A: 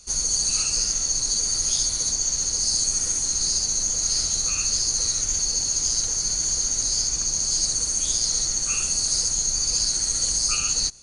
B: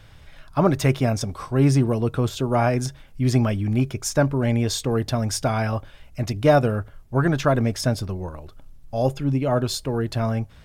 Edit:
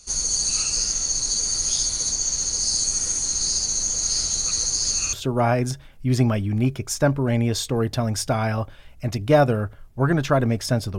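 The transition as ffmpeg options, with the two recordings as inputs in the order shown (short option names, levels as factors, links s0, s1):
-filter_complex "[0:a]apad=whole_dur=10.98,atrim=end=10.98,asplit=2[s0][s1];[s0]atrim=end=4.512[s2];[s1]atrim=start=4.508:end=5.132,asetpts=PTS-STARTPTS,areverse[s3];[1:a]atrim=start=2.278:end=8.13[s4];[s2][s3]acrossfade=d=0.004:c1=hsin:c2=hsin[s5];[s5][s4]acrossfade=d=0.004:c1=hsin:c2=hsin"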